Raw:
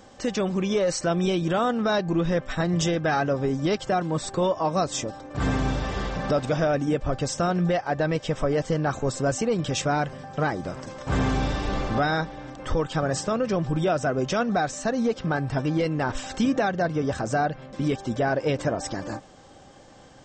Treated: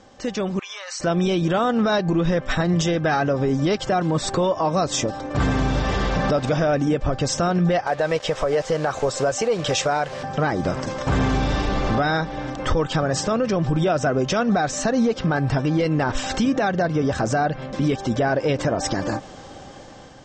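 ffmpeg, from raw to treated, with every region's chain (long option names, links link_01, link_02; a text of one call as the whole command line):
ffmpeg -i in.wav -filter_complex "[0:a]asettb=1/sr,asplit=3[link_01][link_02][link_03];[link_01]atrim=end=0.594[link_04];[link_02]atrim=start=0.59:end=1,asetpts=PTS-STARTPTS,afade=type=in:duration=0.004:curve=qsin,afade=type=out:start_time=0.406:duration=0.004:curve=qsin,highpass=frequency=980:width=0.5412,highpass=frequency=980:width=1.3066,acompressor=threshold=-34dB:ratio=2.5:attack=3.2:release=140:knee=1:detection=peak[link_05];[link_03]atrim=start=0.996[link_06];[link_04][link_05]acrossfade=duration=0.004:curve1=hsin:curve2=qsin[link_07];[link_07][link_06]acrossfade=duration=0.004:curve1=qsin:curve2=hsin,asettb=1/sr,asplit=3[link_08][link_09][link_10];[link_08]atrim=end=7.874[link_11];[link_09]atrim=start=7.87:end=10.23,asetpts=PTS-STARTPTS,afade=type=in:duration=0.004:curve=qsin,afade=type=out:start_time=2.356:duration=0.004:curve=qsin,lowshelf=frequency=370:width_type=q:width=1.5:gain=-7.5,acrusher=bits=6:mix=0:aa=0.5[link_12];[link_10]atrim=start=10.226[link_13];[link_11][link_12]acrossfade=duration=0.004:curve1=hsin:curve2=qsin[link_14];[link_14][link_13]acrossfade=duration=0.004:curve1=qsin:curve2=hsin,lowpass=frequency=7500:width=0.5412,lowpass=frequency=7500:width=1.3066,dynaudnorm=framelen=440:gausssize=5:maxgain=11.5dB,alimiter=limit=-12.5dB:level=0:latency=1:release=173" out.wav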